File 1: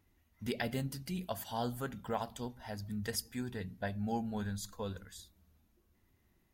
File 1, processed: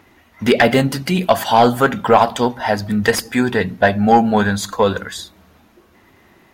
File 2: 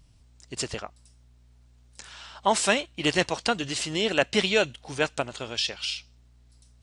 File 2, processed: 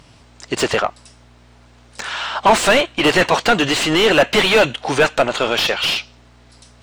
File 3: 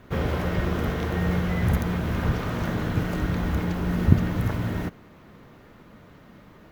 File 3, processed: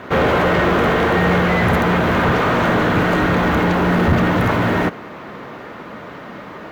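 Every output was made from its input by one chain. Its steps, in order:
overdrive pedal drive 33 dB, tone 1500 Hz, clips at -1 dBFS; dynamic EQ 5200 Hz, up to -4 dB, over -38 dBFS, Q 3.9; match loudness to -16 LUFS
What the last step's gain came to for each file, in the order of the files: +5.5, 0.0, -3.0 dB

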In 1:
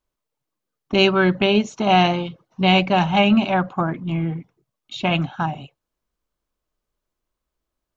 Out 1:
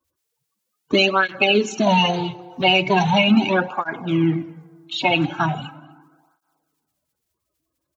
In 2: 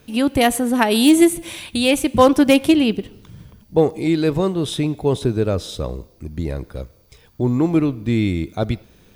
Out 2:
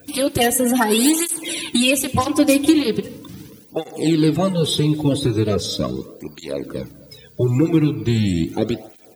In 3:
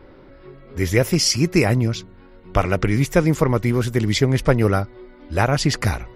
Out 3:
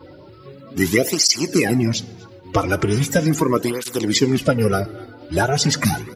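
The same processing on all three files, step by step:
bin magnitudes rounded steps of 30 dB; HPF 75 Hz; high shelf 3300 Hz +7 dB; compressor 3:1, threshold -18 dBFS; outdoor echo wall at 43 m, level -23 dB; FDN reverb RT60 1.7 s, low-frequency decay 0.95×, high-frequency decay 0.45×, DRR 15.5 dB; tape flanging out of phase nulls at 0.39 Hz, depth 5.1 ms; gain +6.5 dB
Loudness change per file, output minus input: +0.5, -0.5, +0.5 LU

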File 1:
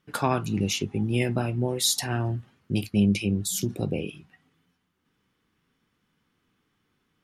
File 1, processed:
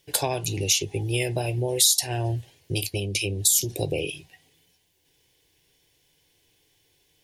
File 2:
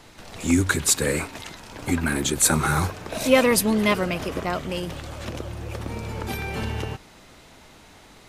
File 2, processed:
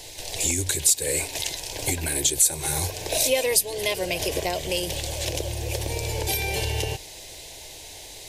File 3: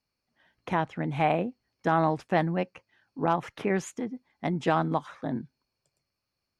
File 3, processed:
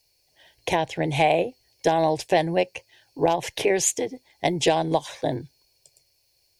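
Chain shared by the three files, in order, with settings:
high shelf 2900 Hz +11.5 dB; compressor 4:1, threshold -25 dBFS; fixed phaser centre 530 Hz, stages 4; match loudness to -24 LUFS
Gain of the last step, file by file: +7.0, +5.5, +12.0 dB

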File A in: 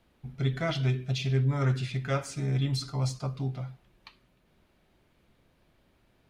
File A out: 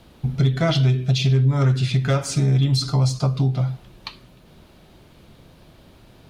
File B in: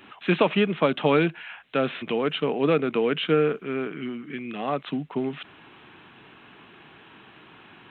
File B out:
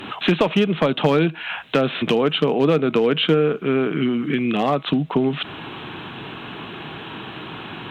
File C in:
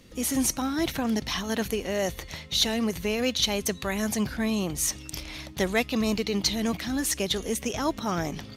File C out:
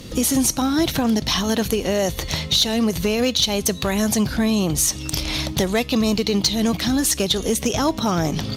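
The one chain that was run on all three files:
graphic EQ 125/2000/4000 Hz +3/-5/+3 dB; compressor 3:1, threshold -35 dBFS; resonator 160 Hz, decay 0.45 s, harmonics all, mix 30%; one-sided clip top -29.5 dBFS; match loudness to -20 LUFS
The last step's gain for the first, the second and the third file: +19.5, +19.5, +18.5 dB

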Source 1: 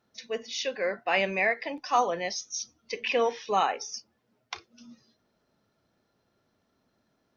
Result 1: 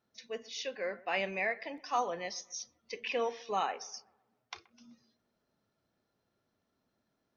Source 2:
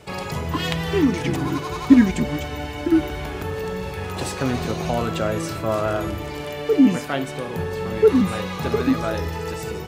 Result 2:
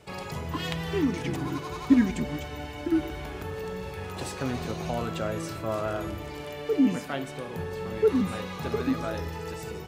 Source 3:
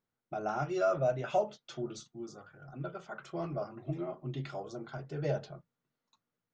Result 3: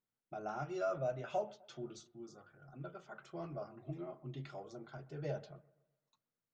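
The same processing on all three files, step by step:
analogue delay 0.127 s, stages 2048, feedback 44%, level -21.5 dB; gain -7.5 dB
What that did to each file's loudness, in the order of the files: -7.5, -7.5, -7.5 LU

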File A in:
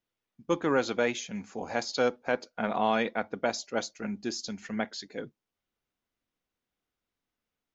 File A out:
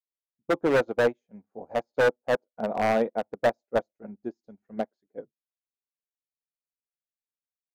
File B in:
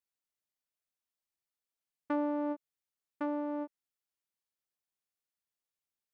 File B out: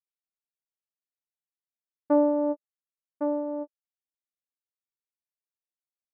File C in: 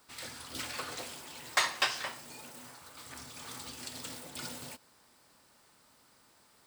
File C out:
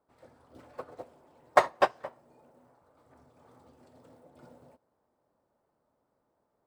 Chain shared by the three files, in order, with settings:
EQ curve 250 Hz 0 dB, 600 Hz +6 dB, 2800 Hz -20 dB, 4800 Hz -23 dB; wavefolder -19 dBFS; upward expander 2.5:1, over -45 dBFS; match loudness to -27 LUFS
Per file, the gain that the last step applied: +6.0, +9.0, +15.0 dB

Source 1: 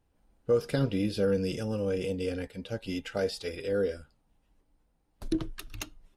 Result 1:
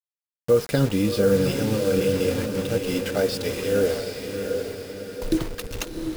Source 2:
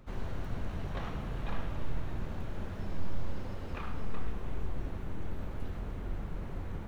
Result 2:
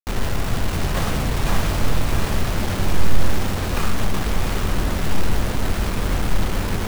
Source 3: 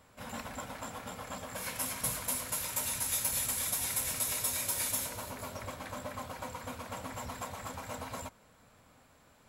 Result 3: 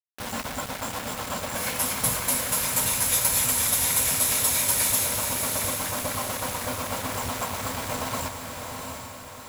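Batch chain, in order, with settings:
bit-crush 7-bit; diffused feedback echo 0.725 s, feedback 49%, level -5 dB; match loudness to -24 LUFS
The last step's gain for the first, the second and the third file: +7.0, +14.0, +9.0 dB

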